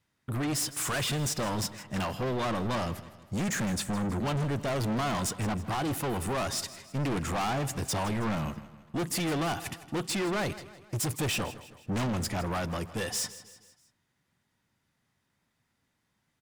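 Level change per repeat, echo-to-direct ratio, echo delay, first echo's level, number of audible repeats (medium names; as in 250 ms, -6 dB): -6.0 dB, -15.0 dB, 160 ms, -16.0 dB, 4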